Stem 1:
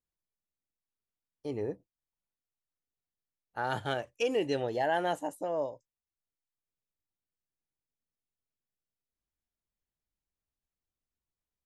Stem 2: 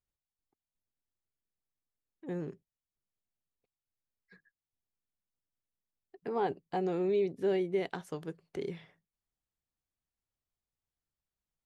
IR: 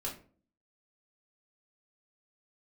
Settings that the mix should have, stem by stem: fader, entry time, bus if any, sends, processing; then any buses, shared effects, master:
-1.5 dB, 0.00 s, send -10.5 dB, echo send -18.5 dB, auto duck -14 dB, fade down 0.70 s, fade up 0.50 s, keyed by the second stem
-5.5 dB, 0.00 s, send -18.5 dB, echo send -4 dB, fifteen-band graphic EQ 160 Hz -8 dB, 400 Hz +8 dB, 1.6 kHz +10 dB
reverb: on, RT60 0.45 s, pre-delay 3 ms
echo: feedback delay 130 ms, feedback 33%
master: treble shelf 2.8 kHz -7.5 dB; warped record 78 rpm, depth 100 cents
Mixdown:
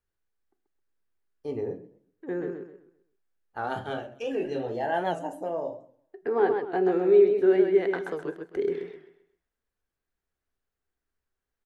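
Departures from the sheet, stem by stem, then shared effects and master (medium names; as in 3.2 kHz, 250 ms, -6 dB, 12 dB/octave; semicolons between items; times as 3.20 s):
stem 2 -5.5 dB -> +0.5 dB; reverb return +8.0 dB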